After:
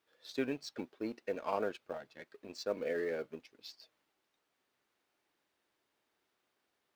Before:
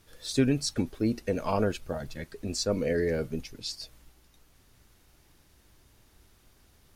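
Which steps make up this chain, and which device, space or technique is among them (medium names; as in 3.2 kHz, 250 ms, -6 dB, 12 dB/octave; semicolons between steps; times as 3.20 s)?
phone line with mismatched companding (band-pass 380–3500 Hz; companding laws mixed up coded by A); trim -4.5 dB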